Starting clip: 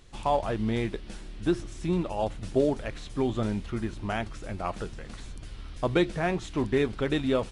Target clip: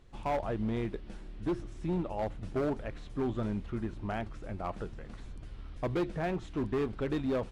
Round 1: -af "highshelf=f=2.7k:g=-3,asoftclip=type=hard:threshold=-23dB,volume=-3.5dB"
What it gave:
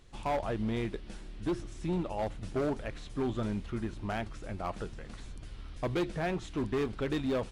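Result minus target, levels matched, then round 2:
4000 Hz band +5.0 dB
-af "highshelf=f=2.7k:g=-12.5,asoftclip=type=hard:threshold=-23dB,volume=-3.5dB"

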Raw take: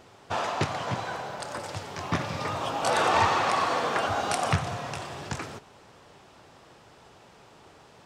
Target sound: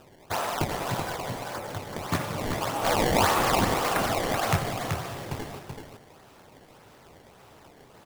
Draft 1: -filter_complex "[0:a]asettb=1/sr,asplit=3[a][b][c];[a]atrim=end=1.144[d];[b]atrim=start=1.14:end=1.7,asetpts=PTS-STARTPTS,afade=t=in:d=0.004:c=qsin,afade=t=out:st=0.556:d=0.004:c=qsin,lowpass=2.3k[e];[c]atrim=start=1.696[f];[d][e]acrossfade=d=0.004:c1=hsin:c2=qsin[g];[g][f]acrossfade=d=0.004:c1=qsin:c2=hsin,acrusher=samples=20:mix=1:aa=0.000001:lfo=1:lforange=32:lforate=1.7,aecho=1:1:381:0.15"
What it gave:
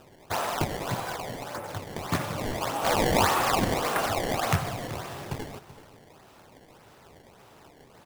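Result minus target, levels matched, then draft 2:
echo-to-direct -10.5 dB
-filter_complex "[0:a]asettb=1/sr,asplit=3[a][b][c];[a]atrim=end=1.144[d];[b]atrim=start=1.14:end=1.7,asetpts=PTS-STARTPTS,afade=t=in:d=0.004:c=qsin,afade=t=out:st=0.556:d=0.004:c=qsin,lowpass=2.3k[e];[c]atrim=start=1.696[f];[d][e]acrossfade=d=0.004:c1=hsin:c2=qsin[g];[g][f]acrossfade=d=0.004:c1=qsin:c2=hsin,acrusher=samples=20:mix=1:aa=0.000001:lfo=1:lforange=32:lforate=1.7,aecho=1:1:381:0.501"

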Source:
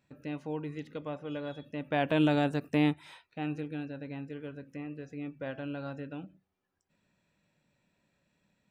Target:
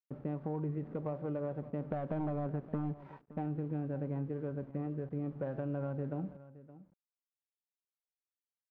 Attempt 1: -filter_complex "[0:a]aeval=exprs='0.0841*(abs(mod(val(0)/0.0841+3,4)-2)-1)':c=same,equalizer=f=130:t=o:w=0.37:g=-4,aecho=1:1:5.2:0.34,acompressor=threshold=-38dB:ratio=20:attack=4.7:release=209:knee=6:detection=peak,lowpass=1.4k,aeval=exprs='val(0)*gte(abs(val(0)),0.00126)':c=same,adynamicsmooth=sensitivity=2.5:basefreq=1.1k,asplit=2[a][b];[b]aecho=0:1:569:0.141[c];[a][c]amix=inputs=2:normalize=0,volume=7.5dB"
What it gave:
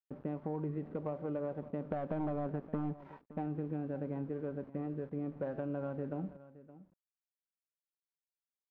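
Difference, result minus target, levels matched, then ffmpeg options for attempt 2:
125 Hz band -3.0 dB
-filter_complex "[0:a]aeval=exprs='0.0841*(abs(mod(val(0)/0.0841+3,4)-2)-1)':c=same,equalizer=f=130:t=o:w=0.37:g=4.5,aecho=1:1:5.2:0.34,acompressor=threshold=-38dB:ratio=20:attack=4.7:release=209:knee=6:detection=peak,lowpass=1.4k,aeval=exprs='val(0)*gte(abs(val(0)),0.00126)':c=same,adynamicsmooth=sensitivity=2.5:basefreq=1.1k,asplit=2[a][b];[b]aecho=0:1:569:0.141[c];[a][c]amix=inputs=2:normalize=0,volume=7.5dB"

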